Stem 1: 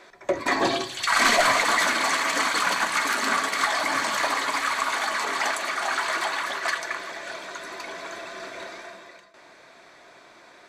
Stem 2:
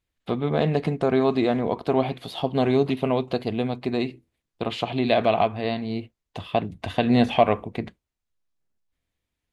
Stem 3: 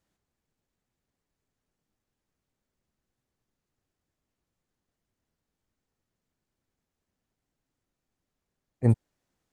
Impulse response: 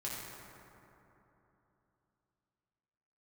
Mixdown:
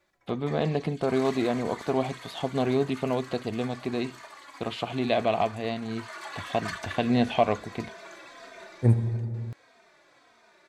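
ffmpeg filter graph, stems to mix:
-filter_complex "[0:a]asplit=2[a][b];[b]adelay=3,afreqshift=-1.6[c];[a][c]amix=inputs=2:normalize=1,volume=-6dB,afade=t=in:st=5.88:d=0.74:silence=0.223872[d];[1:a]volume=-4.5dB[e];[2:a]volume=-3dB,asplit=2[f][g];[g]volume=-6dB[h];[3:a]atrim=start_sample=2205[i];[h][i]afir=irnorm=-1:irlink=0[j];[d][e][f][j]amix=inputs=4:normalize=0"

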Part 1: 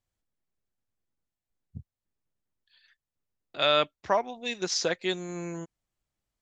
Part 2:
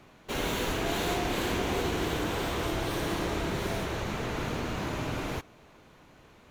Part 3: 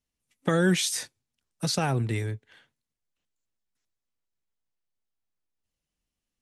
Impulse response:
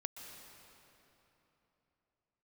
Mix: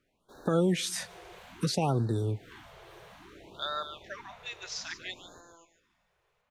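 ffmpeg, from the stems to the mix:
-filter_complex "[0:a]highpass=1.3k,volume=-6.5dB,asplit=3[a][b][c];[b]volume=-14.5dB[d];[c]volume=-9dB[e];[1:a]volume=-18.5dB,asplit=2[f][g];[g]volume=-8dB[h];[2:a]volume=1.5dB,asplit=3[i][j][k];[j]volume=-21.5dB[l];[k]apad=whole_len=287029[m];[f][m]sidechaincompress=threshold=-37dB:ratio=8:attack=16:release=218[n];[a][i]amix=inputs=2:normalize=0,lowshelf=f=480:g=9,alimiter=limit=-15dB:level=0:latency=1:release=387,volume=0dB[o];[3:a]atrim=start_sample=2205[p];[d][l]amix=inputs=2:normalize=0[q];[q][p]afir=irnorm=-1:irlink=0[r];[e][h]amix=inputs=2:normalize=0,aecho=0:1:146:1[s];[n][o][r][s]amix=inputs=4:normalize=0,bass=f=250:g=-7,treble=f=4k:g=-5,afftfilt=real='re*(1-between(b*sr/1024,230*pow(2600/230,0.5+0.5*sin(2*PI*0.6*pts/sr))/1.41,230*pow(2600/230,0.5+0.5*sin(2*PI*0.6*pts/sr))*1.41))':imag='im*(1-between(b*sr/1024,230*pow(2600/230,0.5+0.5*sin(2*PI*0.6*pts/sr))/1.41,230*pow(2600/230,0.5+0.5*sin(2*PI*0.6*pts/sr))*1.41))':win_size=1024:overlap=0.75"

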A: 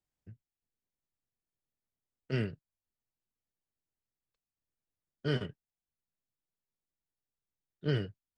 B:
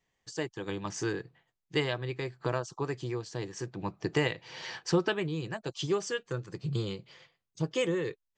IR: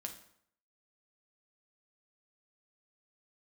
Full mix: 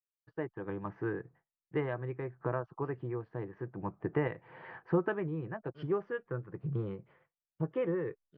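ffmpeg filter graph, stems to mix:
-filter_complex "[0:a]adelay=500,volume=-16.5dB[a];[1:a]lowpass=f=1.7k:w=0.5412,lowpass=f=1.7k:w=1.3066,agate=range=-33dB:threshold=-54dB:ratio=3:detection=peak,volume=-2.5dB,asplit=2[b][c];[c]apad=whole_len=391452[d];[a][d]sidechaincompress=threshold=-51dB:ratio=8:attack=8:release=107[e];[e][b]amix=inputs=2:normalize=0,lowpass=5.1k"

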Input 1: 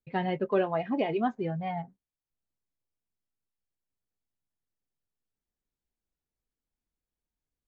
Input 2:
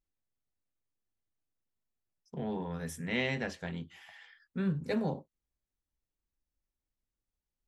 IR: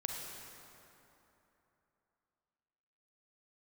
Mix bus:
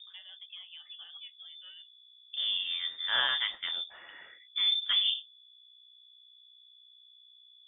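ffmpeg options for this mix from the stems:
-filter_complex "[0:a]acompressor=threshold=-44dB:ratio=2.5,volume=-0.5dB[a];[1:a]acontrast=64,aeval=exprs='val(0)+0.00708*(sin(2*PI*60*n/s)+sin(2*PI*2*60*n/s)/2+sin(2*PI*3*60*n/s)/3+sin(2*PI*4*60*n/s)/4+sin(2*PI*5*60*n/s)/5)':c=same,volume=-2.5dB,asplit=2[b][c];[c]apad=whole_len=338414[d];[a][d]sidechaincompress=threshold=-52dB:ratio=5:attack=16:release=492[e];[e][b]amix=inputs=2:normalize=0,bandreject=f=60:t=h:w=6,bandreject=f=120:t=h:w=6,bandreject=f=180:t=h:w=6,lowpass=f=3.1k:t=q:w=0.5098,lowpass=f=3.1k:t=q:w=0.6013,lowpass=f=3.1k:t=q:w=0.9,lowpass=f=3.1k:t=q:w=2.563,afreqshift=-3700"

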